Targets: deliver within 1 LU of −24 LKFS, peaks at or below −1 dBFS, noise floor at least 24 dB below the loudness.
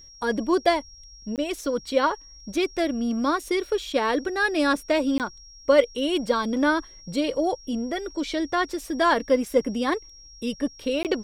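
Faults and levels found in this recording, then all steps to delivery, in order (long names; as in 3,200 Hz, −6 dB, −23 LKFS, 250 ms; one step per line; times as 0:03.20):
number of dropouts 3; longest dropout 18 ms; interfering tone 5,600 Hz; level of the tone −46 dBFS; integrated loudness −25.0 LKFS; sample peak −4.5 dBFS; target loudness −24.0 LKFS
→ repair the gap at 0:01.36/0:05.18/0:11.03, 18 ms
notch filter 5,600 Hz, Q 30
level +1 dB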